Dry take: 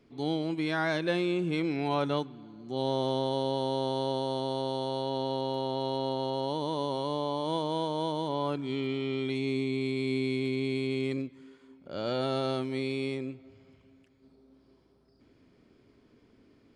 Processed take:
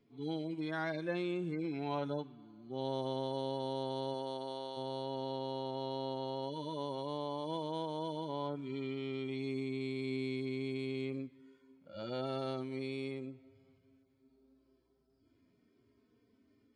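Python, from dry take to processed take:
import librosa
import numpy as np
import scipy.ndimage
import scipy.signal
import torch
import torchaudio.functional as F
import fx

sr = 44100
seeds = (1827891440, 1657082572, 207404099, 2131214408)

y = fx.hpss_only(x, sr, part='harmonic')
y = fx.highpass(y, sr, hz=fx.line((4.13, 160.0), (4.76, 690.0)), slope=6, at=(4.13, 4.76), fade=0.02)
y = F.gain(torch.from_numpy(y), -7.5).numpy()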